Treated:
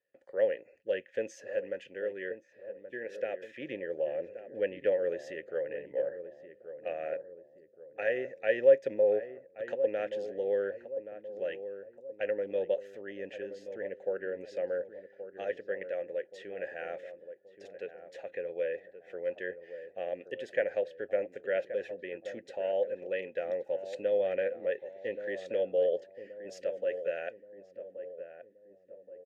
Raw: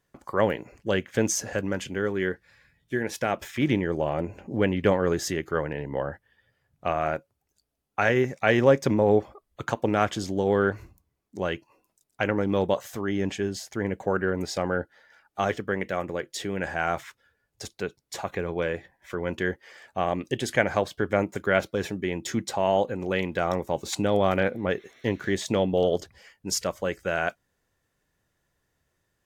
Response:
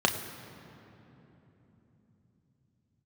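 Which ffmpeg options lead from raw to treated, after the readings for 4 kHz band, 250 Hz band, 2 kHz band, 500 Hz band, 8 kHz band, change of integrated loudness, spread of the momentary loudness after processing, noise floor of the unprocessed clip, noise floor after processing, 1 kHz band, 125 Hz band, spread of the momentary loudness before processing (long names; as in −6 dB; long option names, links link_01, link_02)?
below −15 dB, −18.5 dB, −11.0 dB, −4.0 dB, below −25 dB, −7.0 dB, 16 LU, −77 dBFS, −61 dBFS, −18.5 dB, below −25 dB, 11 LU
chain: -filter_complex "[0:a]asplit=3[link_01][link_02][link_03];[link_01]bandpass=frequency=530:width_type=q:width=8,volume=0dB[link_04];[link_02]bandpass=frequency=1840:width_type=q:width=8,volume=-6dB[link_05];[link_03]bandpass=frequency=2480:width_type=q:width=8,volume=-9dB[link_06];[link_04][link_05][link_06]amix=inputs=3:normalize=0,asplit=2[link_07][link_08];[link_08]adelay=1126,lowpass=frequency=890:poles=1,volume=-10dB,asplit=2[link_09][link_10];[link_10]adelay=1126,lowpass=frequency=890:poles=1,volume=0.52,asplit=2[link_11][link_12];[link_12]adelay=1126,lowpass=frequency=890:poles=1,volume=0.52,asplit=2[link_13][link_14];[link_14]adelay=1126,lowpass=frequency=890:poles=1,volume=0.52,asplit=2[link_15][link_16];[link_16]adelay=1126,lowpass=frequency=890:poles=1,volume=0.52,asplit=2[link_17][link_18];[link_18]adelay=1126,lowpass=frequency=890:poles=1,volume=0.52[link_19];[link_07][link_09][link_11][link_13][link_15][link_17][link_19]amix=inputs=7:normalize=0"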